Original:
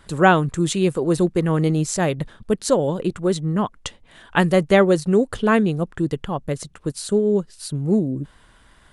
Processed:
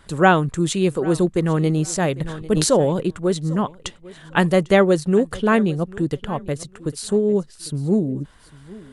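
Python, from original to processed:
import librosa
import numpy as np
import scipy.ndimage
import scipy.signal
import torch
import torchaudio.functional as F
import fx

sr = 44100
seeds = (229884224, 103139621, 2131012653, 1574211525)

p1 = x + fx.echo_feedback(x, sr, ms=799, feedback_pct=22, wet_db=-20.5, dry=0)
y = fx.sustainer(p1, sr, db_per_s=36.0, at=(2.22, 3.0))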